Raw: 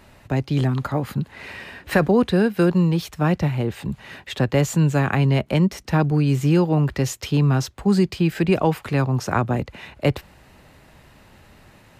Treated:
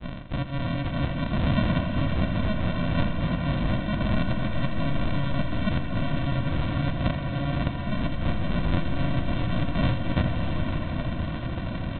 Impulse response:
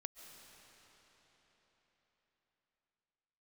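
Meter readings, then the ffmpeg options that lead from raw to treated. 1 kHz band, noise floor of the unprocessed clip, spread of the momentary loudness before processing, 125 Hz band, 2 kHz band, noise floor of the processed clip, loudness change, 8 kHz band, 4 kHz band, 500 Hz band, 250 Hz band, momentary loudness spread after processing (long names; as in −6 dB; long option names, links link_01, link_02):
−5.5 dB, −51 dBFS, 11 LU, −5.0 dB, −4.0 dB, −32 dBFS, −6.5 dB, below −40 dB, −2.5 dB, −10.0 dB, −6.5 dB, 4 LU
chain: -filter_complex "[0:a]asplit=2[link_01][link_02];[link_02]highpass=frequency=720:poles=1,volume=39dB,asoftclip=type=tanh:threshold=-5.5dB[link_03];[link_01][link_03]amix=inputs=2:normalize=0,lowpass=frequency=1000:poles=1,volume=-6dB,areverse,acompressor=threshold=-23dB:ratio=10,areverse,agate=range=-33dB:threshold=-20dB:ratio=3:detection=peak,crystalizer=i=10:c=0,aresample=8000,acrusher=samples=19:mix=1:aa=0.000001,aresample=44100,aecho=1:1:83|166|249|332|415|498|581:0.299|0.17|0.097|0.0553|0.0315|0.018|0.0102[link_04];[1:a]atrim=start_sample=2205,asetrate=22932,aresample=44100[link_05];[link_04][link_05]afir=irnorm=-1:irlink=0,volume=1dB"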